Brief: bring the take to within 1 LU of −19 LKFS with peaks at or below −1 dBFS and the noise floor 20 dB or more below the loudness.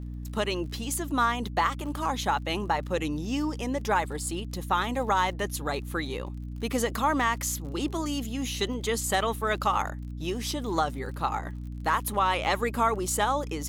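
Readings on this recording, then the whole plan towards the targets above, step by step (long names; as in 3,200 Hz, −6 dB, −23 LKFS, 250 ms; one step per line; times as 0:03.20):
crackle rate 36 per second; mains hum 60 Hz; hum harmonics up to 300 Hz; level of the hum −34 dBFS; integrated loudness −28.5 LKFS; sample peak −12.5 dBFS; target loudness −19.0 LKFS
→ click removal
mains-hum notches 60/120/180/240/300 Hz
level +9.5 dB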